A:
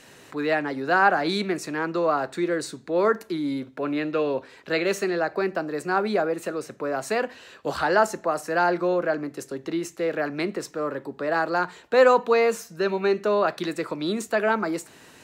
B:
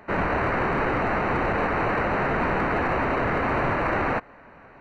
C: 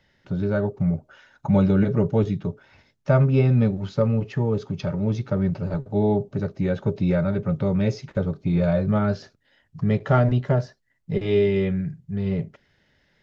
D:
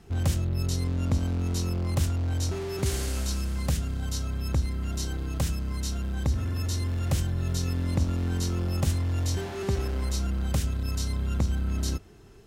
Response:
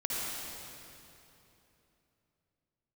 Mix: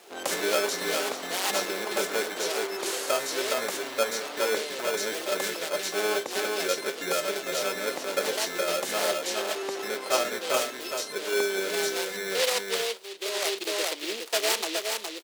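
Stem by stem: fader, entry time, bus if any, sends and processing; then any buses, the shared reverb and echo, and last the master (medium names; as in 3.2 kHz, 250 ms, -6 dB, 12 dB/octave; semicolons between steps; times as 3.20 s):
-5.5 dB, 0.00 s, no send, echo send -5 dB, low-pass 2.4 kHz; delay time shaken by noise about 3.2 kHz, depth 0.22 ms; auto duck -18 dB, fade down 1.45 s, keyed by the third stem
-11.5 dB, 0.20 s, no send, no echo send, compression, threshold -27 dBFS, peak gain reduction 6 dB
-2.5 dB, 0.00 s, no send, echo send -3.5 dB, gain riding 0.5 s; sample-and-hold 23×
+2.5 dB, 0.00 s, no send, no echo send, none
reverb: none
echo: delay 416 ms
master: high-pass 400 Hz 24 dB/octave; gain riding 2 s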